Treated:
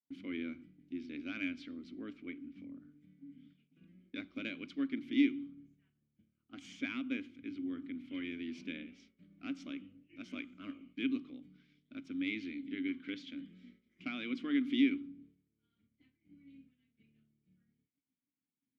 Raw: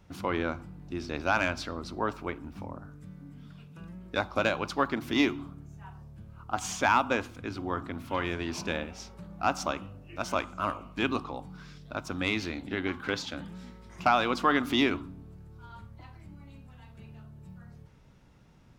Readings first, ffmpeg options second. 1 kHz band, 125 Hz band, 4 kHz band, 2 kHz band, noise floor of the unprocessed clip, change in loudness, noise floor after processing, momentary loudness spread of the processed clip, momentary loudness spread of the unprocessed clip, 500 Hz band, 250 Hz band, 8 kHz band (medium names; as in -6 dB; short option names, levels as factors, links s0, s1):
-29.0 dB, -19.5 dB, -11.5 dB, -12.5 dB, -57 dBFS, -8.5 dB, under -85 dBFS, 20 LU, 23 LU, -18.5 dB, -3.0 dB, under -20 dB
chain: -filter_complex "[0:a]asplit=3[s0][s1][s2];[s0]bandpass=f=270:t=q:w=8,volume=1[s3];[s1]bandpass=f=2290:t=q:w=8,volume=0.501[s4];[s2]bandpass=f=3010:t=q:w=8,volume=0.355[s5];[s3][s4][s5]amix=inputs=3:normalize=0,agate=range=0.0224:threshold=0.00141:ratio=3:detection=peak,volume=1.12"